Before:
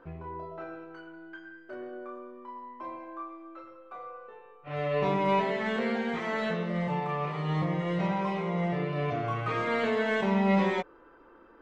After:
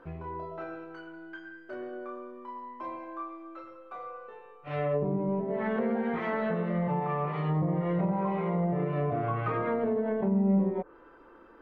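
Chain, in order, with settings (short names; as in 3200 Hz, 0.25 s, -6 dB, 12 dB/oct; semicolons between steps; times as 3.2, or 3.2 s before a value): treble ducked by the level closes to 380 Hz, closed at -23 dBFS; gain +1.5 dB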